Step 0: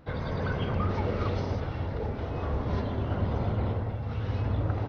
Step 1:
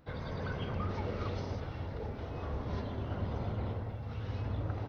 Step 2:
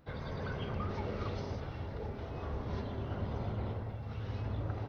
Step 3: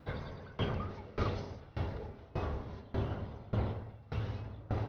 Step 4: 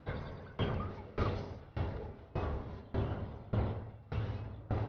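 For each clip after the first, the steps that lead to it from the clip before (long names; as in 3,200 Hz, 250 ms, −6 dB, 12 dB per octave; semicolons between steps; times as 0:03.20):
high-shelf EQ 4,600 Hz +6.5 dB; level −7.5 dB
convolution reverb RT60 0.35 s, pre-delay 3 ms, DRR 15.5 dB; level −1 dB
tremolo with a ramp in dB decaying 1.7 Hz, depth 24 dB; level +7.5 dB
high-frequency loss of the air 90 metres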